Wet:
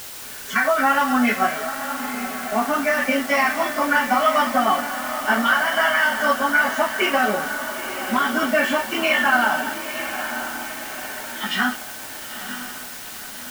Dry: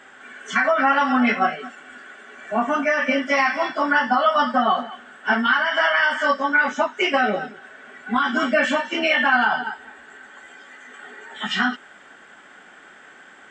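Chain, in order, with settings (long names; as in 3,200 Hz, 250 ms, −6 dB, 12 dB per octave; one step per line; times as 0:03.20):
feedback delay with all-pass diffusion 940 ms, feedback 53%, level −9 dB
dead-zone distortion −47 dBFS
bit-depth reduction 6 bits, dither triangular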